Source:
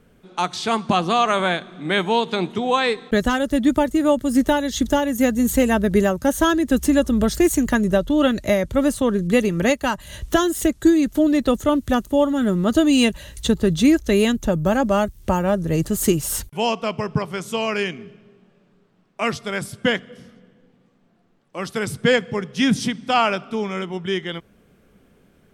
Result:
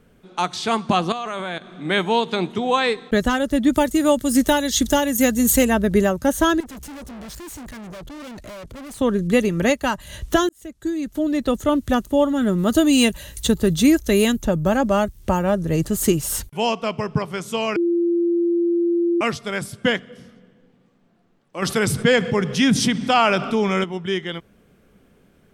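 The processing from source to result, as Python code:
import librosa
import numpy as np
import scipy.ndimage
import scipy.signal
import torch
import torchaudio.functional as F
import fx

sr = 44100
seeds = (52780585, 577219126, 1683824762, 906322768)

y = fx.level_steps(x, sr, step_db=14, at=(1.12, 1.7))
y = fx.high_shelf(y, sr, hz=3100.0, db=9.5, at=(3.73, 5.65))
y = fx.tube_stage(y, sr, drive_db=35.0, bias=0.65, at=(6.6, 9.0))
y = fx.high_shelf(y, sr, hz=9300.0, db=12.0, at=(12.58, 14.42))
y = fx.env_flatten(y, sr, amount_pct=50, at=(21.62, 23.84))
y = fx.edit(y, sr, fx.fade_in_span(start_s=10.49, length_s=1.28),
    fx.bleep(start_s=17.76, length_s=1.45, hz=343.0, db=-16.0), tone=tone)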